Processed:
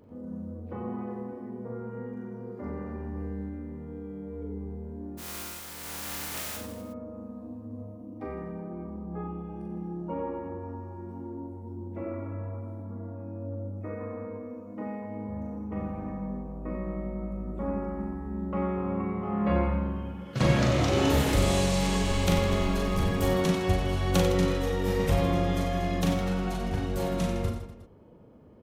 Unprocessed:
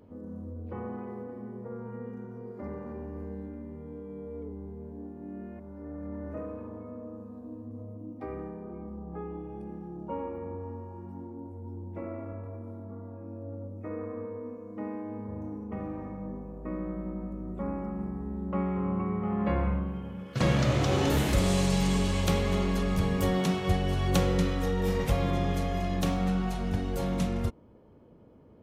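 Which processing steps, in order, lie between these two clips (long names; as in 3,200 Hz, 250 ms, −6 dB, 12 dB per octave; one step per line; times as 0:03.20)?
0:05.17–0:06.56: compressing power law on the bin magnitudes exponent 0.13
0:21.98–0:23.21: background noise brown −38 dBFS
reverse bouncing-ball delay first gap 40 ms, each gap 1.3×, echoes 5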